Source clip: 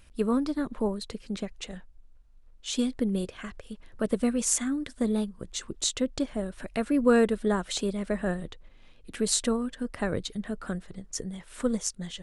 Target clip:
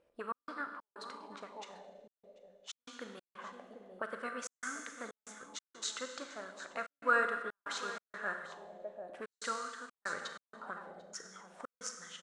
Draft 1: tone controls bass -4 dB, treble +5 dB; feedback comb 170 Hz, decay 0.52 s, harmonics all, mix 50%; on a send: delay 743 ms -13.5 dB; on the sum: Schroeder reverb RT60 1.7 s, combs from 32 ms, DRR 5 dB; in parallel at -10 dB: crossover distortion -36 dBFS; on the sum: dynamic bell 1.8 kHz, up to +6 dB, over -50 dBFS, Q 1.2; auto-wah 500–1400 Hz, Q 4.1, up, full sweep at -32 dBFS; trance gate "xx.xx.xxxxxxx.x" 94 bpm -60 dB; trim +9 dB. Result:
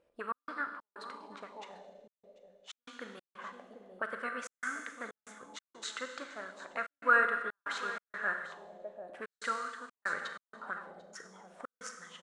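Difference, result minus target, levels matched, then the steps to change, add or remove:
8 kHz band -9.0 dB
change: dynamic bell 6 kHz, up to +6 dB, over -50 dBFS, Q 1.2

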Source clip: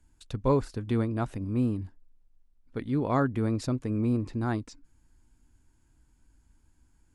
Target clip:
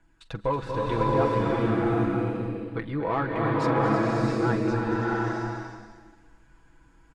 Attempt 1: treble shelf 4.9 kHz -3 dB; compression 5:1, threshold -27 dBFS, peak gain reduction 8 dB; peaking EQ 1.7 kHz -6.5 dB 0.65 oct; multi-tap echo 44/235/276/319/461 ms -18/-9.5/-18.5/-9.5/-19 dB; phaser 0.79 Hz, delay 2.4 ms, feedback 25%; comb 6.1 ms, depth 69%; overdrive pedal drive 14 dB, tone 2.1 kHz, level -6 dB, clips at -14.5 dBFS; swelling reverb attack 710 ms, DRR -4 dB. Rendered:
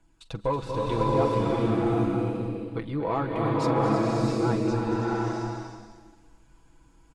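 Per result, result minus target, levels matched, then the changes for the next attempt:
2 kHz band -5.5 dB; 8 kHz band +4.5 dB
change: peaking EQ 1.7 kHz +3 dB 0.65 oct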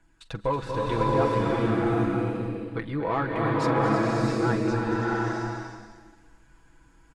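8 kHz band +4.0 dB
change: treble shelf 4.9 kHz -9.5 dB

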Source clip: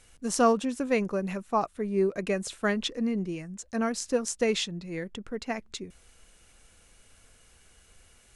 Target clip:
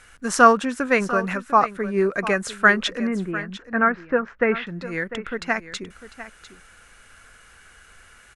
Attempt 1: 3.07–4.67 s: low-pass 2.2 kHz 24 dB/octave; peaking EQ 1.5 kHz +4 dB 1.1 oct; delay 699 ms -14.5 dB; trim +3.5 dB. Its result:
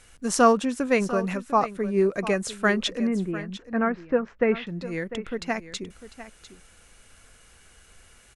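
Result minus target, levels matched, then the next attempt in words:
2 kHz band -5.0 dB
3.07–4.67 s: low-pass 2.2 kHz 24 dB/octave; peaking EQ 1.5 kHz +15 dB 1.1 oct; delay 699 ms -14.5 dB; trim +3.5 dB

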